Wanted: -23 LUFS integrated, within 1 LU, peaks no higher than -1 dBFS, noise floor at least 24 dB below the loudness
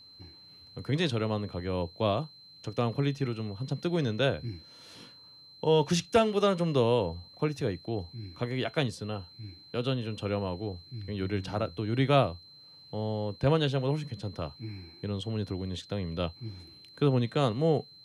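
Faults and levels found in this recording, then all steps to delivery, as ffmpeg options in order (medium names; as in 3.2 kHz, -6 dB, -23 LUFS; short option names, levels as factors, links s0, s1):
steady tone 4.1 kHz; tone level -51 dBFS; loudness -30.5 LUFS; peak level -12.0 dBFS; loudness target -23.0 LUFS
-> -af "bandreject=f=4100:w=30"
-af "volume=2.37"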